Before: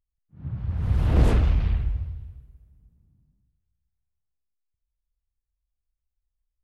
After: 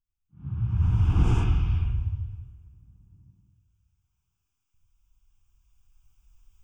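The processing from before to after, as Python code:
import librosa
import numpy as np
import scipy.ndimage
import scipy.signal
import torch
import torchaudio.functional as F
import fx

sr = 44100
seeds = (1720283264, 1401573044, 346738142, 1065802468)

y = fx.recorder_agc(x, sr, target_db=-14.0, rise_db_per_s=5.1, max_gain_db=30)
y = fx.fixed_phaser(y, sr, hz=2800.0, stages=8)
y = fx.rev_gated(y, sr, seeds[0], gate_ms=130, shape='rising', drr_db=-3.0)
y = y * librosa.db_to_amplitude(-5.0)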